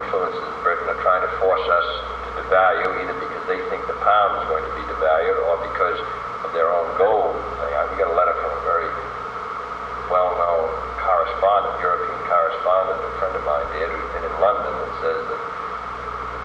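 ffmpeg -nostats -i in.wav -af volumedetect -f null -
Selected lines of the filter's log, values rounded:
mean_volume: -21.4 dB
max_volume: -3.4 dB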